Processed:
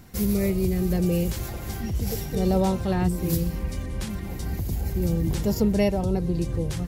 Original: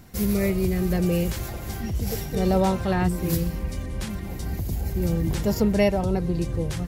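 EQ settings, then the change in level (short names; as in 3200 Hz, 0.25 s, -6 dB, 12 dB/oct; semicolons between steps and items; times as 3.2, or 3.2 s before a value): dynamic EQ 1600 Hz, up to -6 dB, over -40 dBFS, Q 0.72; bell 640 Hz -2.5 dB 0.25 oct; 0.0 dB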